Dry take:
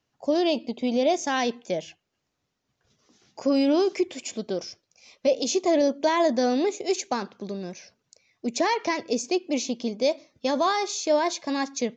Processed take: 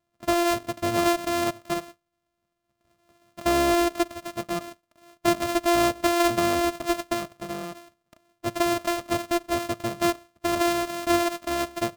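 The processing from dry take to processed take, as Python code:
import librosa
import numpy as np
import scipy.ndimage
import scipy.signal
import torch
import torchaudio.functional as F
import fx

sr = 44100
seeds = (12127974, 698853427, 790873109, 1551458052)

y = np.r_[np.sort(x[:len(x) // 128 * 128].reshape(-1, 128), axis=1).ravel(), x[len(x) // 128 * 128:]]
y = fx.small_body(y, sr, hz=(650.0, 1200.0), ring_ms=60, db=11)
y = y * librosa.db_to_amplitude(-1.5)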